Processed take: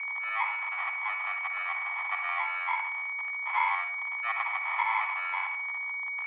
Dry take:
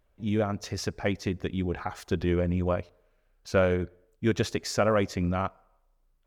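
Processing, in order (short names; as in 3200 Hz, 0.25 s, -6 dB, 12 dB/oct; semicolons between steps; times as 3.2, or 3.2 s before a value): switching spikes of -26.5 dBFS; in parallel at +0.5 dB: limiter -21.5 dBFS, peak gain reduction 8.5 dB; on the sum: sample-and-hold 37×; on a send at -5 dB: reverb RT60 0.50 s, pre-delay 46 ms; on the sum: whine 1900 Hz -27 dBFS; mistuned SSB +350 Hz 590–2300 Hz; gain -4.5 dB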